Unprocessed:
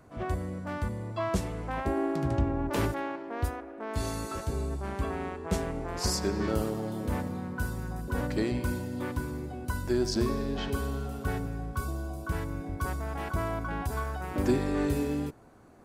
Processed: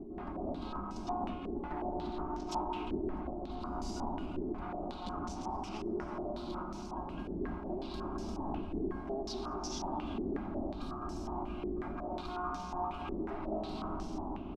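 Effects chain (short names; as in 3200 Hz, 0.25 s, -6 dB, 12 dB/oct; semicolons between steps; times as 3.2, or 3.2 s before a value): minimum comb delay 6 ms; wind noise 280 Hz -30 dBFS; compressor 6:1, threshold -31 dBFS, peak gain reduction 18 dB; fixed phaser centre 450 Hz, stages 6; soft clip -27.5 dBFS, distortion -23 dB; bouncing-ball echo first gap 0.23 s, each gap 0.65×, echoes 5; speed mistake 44.1 kHz file played as 48 kHz; stepped low-pass 5.5 Hz 420–5800 Hz; gain -3.5 dB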